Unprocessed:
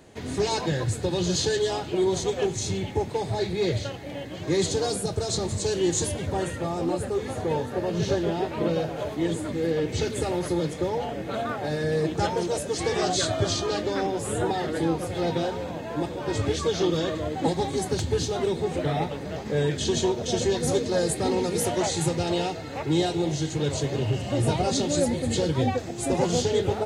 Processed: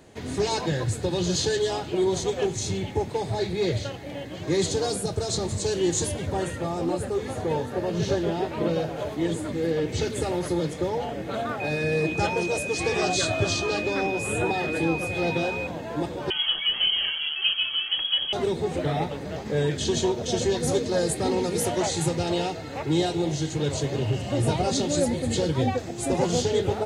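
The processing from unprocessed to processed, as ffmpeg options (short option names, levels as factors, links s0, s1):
-filter_complex "[0:a]asettb=1/sr,asplit=3[s0][s1][s2];[s0]atrim=end=11.604[s3];[s1]atrim=start=11.6:end=15.67,asetpts=PTS-STARTPTS,afade=t=in:d=0.004:c=qsin,afade=t=out:st=4.066:d=0.004:c=qsin,aeval=exprs='val(0)+0.0282*sin(2*PI*2500*n/s)':c=same[s4];[s2]atrim=start=15.666[s5];[s3][s4]acrossfade=d=0.004:c1=hsin:c2=qsin[s6];[s6][s5]acrossfade=d=0.004:c1=qsin:c2=hsin,asettb=1/sr,asplit=3[s7][s8][s9];[s7]atrim=end=16.304[s10];[s8]atrim=start=16.3:end=18.33,asetpts=PTS-STARTPTS,afade=t=in:d=0.004:c=qsin,afade=t=out:st=2.026:d=0.004:c=qsin,lowpass=f=2900:t=q:w=0.5098,lowpass=f=2900:t=q:w=0.6013,lowpass=f=2900:t=q:w=0.9,lowpass=f=2900:t=q:w=2.563,afreqshift=-3400[s11];[s9]atrim=start=18.326[s12];[s10][s11]acrossfade=d=0.004:c1=hsin:c2=qsin[s13];[s13][s12]acrossfade=d=0.004:c1=qsin:c2=hsin"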